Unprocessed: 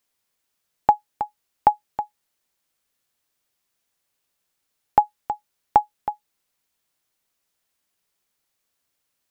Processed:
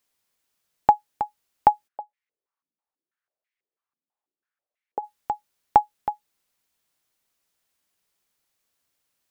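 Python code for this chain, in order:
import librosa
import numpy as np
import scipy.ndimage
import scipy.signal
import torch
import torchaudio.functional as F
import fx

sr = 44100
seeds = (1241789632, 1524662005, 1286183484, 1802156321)

y = fx.filter_held_bandpass(x, sr, hz=6.1, low_hz=240.0, high_hz=2100.0, at=(1.87, 5.02), fade=0.02)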